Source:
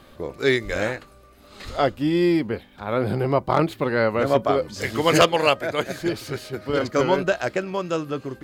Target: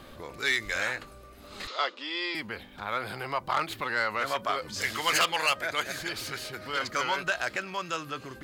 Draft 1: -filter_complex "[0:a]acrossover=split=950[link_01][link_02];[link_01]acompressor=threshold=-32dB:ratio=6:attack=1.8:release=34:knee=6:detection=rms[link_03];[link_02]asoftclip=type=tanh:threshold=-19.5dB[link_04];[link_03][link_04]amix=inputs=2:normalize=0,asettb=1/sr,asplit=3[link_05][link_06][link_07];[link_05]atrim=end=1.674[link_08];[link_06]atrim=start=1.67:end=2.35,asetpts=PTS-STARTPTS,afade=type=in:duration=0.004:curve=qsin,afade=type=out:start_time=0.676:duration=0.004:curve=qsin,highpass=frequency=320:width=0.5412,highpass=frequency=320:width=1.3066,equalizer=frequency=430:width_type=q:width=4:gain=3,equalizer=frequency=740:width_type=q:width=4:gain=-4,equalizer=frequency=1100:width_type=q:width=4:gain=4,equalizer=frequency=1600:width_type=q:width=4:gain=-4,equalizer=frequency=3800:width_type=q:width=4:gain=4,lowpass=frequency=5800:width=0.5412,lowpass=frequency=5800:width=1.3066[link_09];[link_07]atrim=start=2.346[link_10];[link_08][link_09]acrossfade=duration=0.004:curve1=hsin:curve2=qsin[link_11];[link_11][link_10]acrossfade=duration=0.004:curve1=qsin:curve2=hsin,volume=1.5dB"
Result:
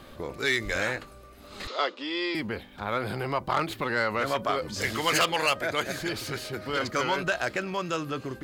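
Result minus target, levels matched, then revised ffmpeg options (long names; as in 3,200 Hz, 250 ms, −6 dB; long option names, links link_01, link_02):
downward compressor: peak gain reduction −9 dB
-filter_complex "[0:a]acrossover=split=950[link_01][link_02];[link_01]acompressor=threshold=-43dB:ratio=6:attack=1.8:release=34:knee=6:detection=rms[link_03];[link_02]asoftclip=type=tanh:threshold=-19.5dB[link_04];[link_03][link_04]amix=inputs=2:normalize=0,asettb=1/sr,asplit=3[link_05][link_06][link_07];[link_05]atrim=end=1.674[link_08];[link_06]atrim=start=1.67:end=2.35,asetpts=PTS-STARTPTS,afade=type=in:duration=0.004:curve=qsin,afade=type=out:start_time=0.676:duration=0.004:curve=qsin,highpass=frequency=320:width=0.5412,highpass=frequency=320:width=1.3066,equalizer=frequency=430:width_type=q:width=4:gain=3,equalizer=frequency=740:width_type=q:width=4:gain=-4,equalizer=frequency=1100:width_type=q:width=4:gain=4,equalizer=frequency=1600:width_type=q:width=4:gain=-4,equalizer=frequency=3800:width_type=q:width=4:gain=4,lowpass=frequency=5800:width=0.5412,lowpass=frequency=5800:width=1.3066[link_09];[link_07]atrim=start=2.346[link_10];[link_08][link_09]acrossfade=duration=0.004:curve1=hsin:curve2=qsin[link_11];[link_11][link_10]acrossfade=duration=0.004:curve1=qsin:curve2=hsin,volume=1.5dB"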